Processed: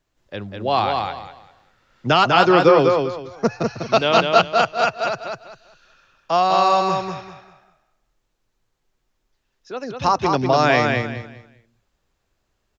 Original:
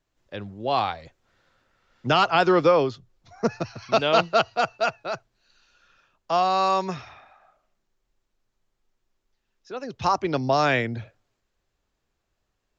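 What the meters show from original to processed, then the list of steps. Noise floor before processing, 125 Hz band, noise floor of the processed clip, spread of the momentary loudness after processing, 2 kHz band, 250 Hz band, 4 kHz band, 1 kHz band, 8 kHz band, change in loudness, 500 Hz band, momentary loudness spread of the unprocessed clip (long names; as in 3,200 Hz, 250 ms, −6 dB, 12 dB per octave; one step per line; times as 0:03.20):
−78 dBFS, +5.5 dB, −73 dBFS, 19 LU, +5.5 dB, +5.5 dB, +5.5 dB, +5.5 dB, can't be measured, +5.0 dB, +5.5 dB, 18 LU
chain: repeating echo 198 ms, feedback 26%, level −4 dB
level +4 dB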